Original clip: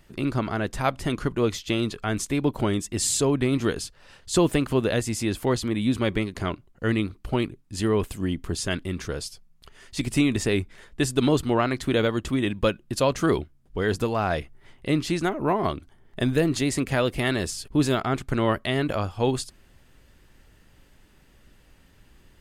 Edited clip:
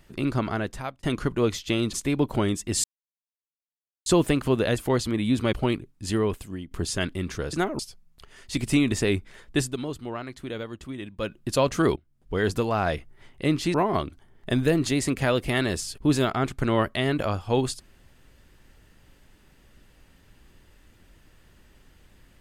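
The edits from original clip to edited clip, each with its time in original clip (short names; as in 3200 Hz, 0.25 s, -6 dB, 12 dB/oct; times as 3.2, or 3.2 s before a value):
0.53–1.03 fade out
1.93–2.18 cut
3.09–4.31 mute
5.03–5.35 cut
6.1–7.23 cut
7.79–8.41 fade out, to -14.5 dB
11.05–12.8 dip -11.5 dB, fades 0.16 s
13.4–13.78 fade in, from -24 dB
15.18–15.44 move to 9.23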